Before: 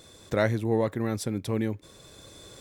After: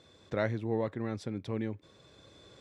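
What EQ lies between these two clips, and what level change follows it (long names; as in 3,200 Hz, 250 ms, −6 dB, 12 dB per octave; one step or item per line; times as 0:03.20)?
high-pass filter 61 Hz
low-pass filter 4,300 Hz 12 dB per octave
−6.5 dB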